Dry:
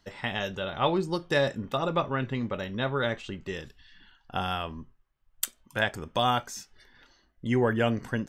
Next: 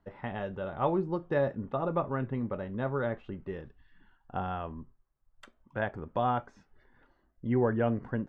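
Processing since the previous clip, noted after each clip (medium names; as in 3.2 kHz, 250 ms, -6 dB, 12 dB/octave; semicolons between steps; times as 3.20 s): low-pass 1.2 kHz 12 dB/octave; trim -2 dB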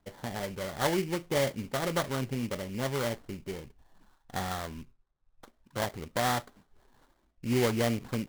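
sample-rate reducer 2.6 kHz, jitter 20%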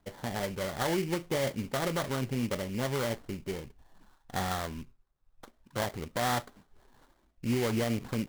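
peak limiter -24 dBFS, peak gain reduction 7.5 dB; trim +2 dB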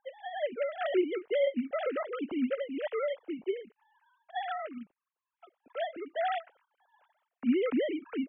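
formants replaced by sine waves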